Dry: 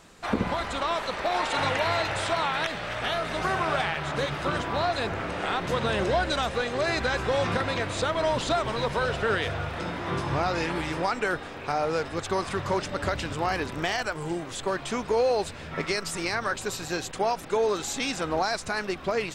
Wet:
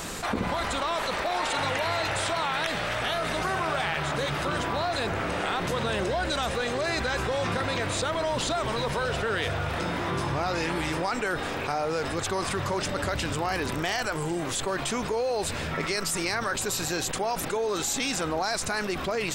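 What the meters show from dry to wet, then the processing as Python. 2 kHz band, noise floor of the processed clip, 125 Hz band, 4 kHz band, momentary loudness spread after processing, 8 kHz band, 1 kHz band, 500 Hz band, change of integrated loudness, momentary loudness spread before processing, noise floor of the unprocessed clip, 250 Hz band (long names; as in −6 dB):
0.0 dB, −32 dBFS, +0.5 dB, +1.5 dB, 2 LU, +5.5 dB, −1.0 dB, −1.5 dB, 0.0 dB, 5 LU, −39 dBFS, 0.0 dB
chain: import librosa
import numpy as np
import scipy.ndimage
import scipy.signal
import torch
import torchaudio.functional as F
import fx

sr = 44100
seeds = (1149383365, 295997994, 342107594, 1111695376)

y = fx.high_shelf(x, sr, hz=9300.0, db=11.5)
y = fx.env_flatten(y, sr, amount_pct=70)
y = F.gain(torch.from_numpy(y), -5.0).numpy()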